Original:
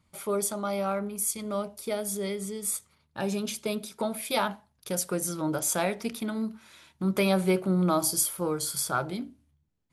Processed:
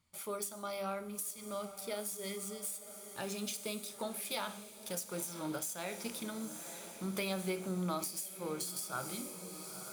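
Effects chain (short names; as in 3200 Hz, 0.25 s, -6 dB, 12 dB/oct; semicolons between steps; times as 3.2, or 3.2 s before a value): median filter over 3 samples; pre-emphasis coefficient 0.8; notches 50/100/150/200/250/300/350/400 Hz; diffused feedback echo 0.967 s, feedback 61%, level -13.5 dB; on a send at -12.5 dB: reverb RT60 0.55 s, pre-delay 21 ms; on the sum: compressor 16:1, threshold -35 dBFS, peak gain reduction 14 dB; high shelf 5500 Hz -6.5 dB; gain +4 dB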